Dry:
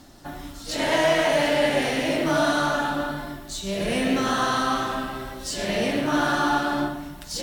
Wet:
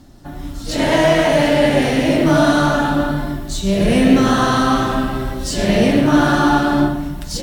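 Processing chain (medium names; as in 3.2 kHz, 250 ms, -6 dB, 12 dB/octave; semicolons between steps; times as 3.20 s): level rider gain up to 9 dB; bass shelf 340 Hz +11.5 dB; trim -3 dB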